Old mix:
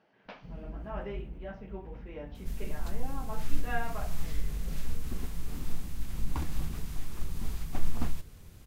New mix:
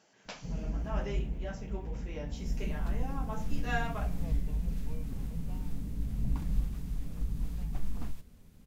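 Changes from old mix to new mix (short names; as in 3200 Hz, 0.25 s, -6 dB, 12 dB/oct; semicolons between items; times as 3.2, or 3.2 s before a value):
speech: remove Gaussian blur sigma 2.7 samples; first sound +7.0 dB; second sound -9.0 dB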